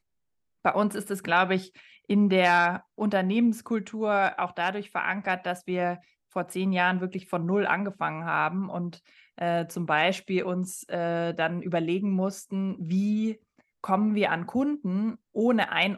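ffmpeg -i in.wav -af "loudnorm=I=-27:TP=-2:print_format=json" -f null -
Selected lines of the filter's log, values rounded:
"input_i" : "-26.9",
"input_tp" : "-9.4",
"input_lra" : "3.4",
"input_thresh" : "-37.2",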